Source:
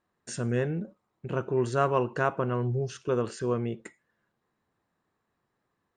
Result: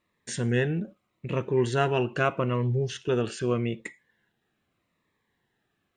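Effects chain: high-order bell 2.6 kHz +8 dB 1.3 oct; Shepard-style phaser falling 0.81 Hz; trim +3 dB

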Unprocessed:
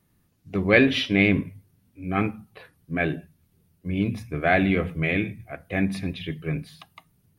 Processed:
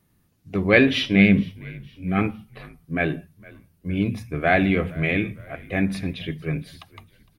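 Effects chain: 1.15–2.19 s: graphic EQ with 31 bands 200 Hz +8 dB, 315 Hz -7 dB, 1 kHz -12 dB; frequency-shifting echo 460 ms, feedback 44%, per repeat -56 Hz, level -22.5 dB; trim +1.5 dB

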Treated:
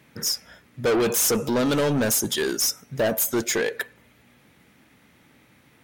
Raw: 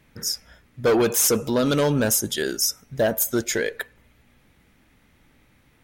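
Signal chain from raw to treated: high-pass 120 Hz 12 dB/octave; saturation -22 dBFS, distortion -10 dB; trim +4 dB

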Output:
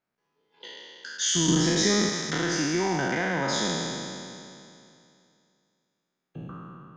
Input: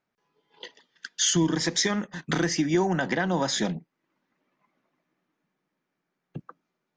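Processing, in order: spectral sustain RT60 2.57 s; 1.48–2.09 s: bass shelf 430 Hz +8 dB; trim -6 dB

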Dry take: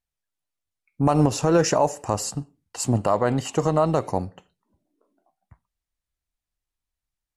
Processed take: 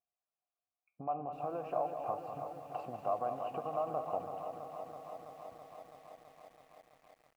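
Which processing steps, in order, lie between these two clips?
bass shelf 210 Hz +7 dB; compression 16:1, threshold -28 dBFS, peak gain reduction 18.5 dB; vowel filter a; distance through air 490 m; on a send: delay 196 ms -8.5 dB; on the sum: bit-crushed delay 329 ms, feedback 80%, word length 12-bit, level -8.5 dB; trim +8 dB

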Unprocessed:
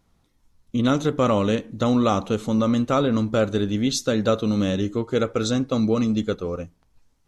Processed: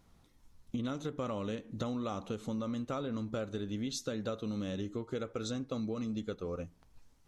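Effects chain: compression 5:1, threshold -36 dBFS, peak gain reduction 18.5 dB

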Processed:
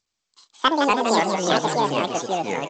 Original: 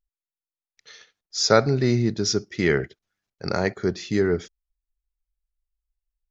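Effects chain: ever faster or slower copies 175 ms, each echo -4 st, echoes 3; high-pass 65 Hz 12 dB/octave; speed mistake 33 rpm record played at 78 rpm; frequency-shifting echo 162 ms, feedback 42%, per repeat +130 Hz, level -9 dB; G.722 64 kbps 16 kHz

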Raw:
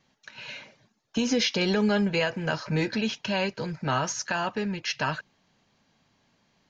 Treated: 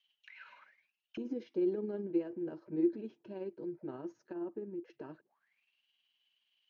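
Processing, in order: 4.33–4.90 s: peaking EQ 4.5 kHz -11 dB 1.9 oct; tremolo 19 Hz, depth 36%; auto-wah 340–3100 Hz, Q 16, down, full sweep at -31.5 dBFS; trim +8 dB

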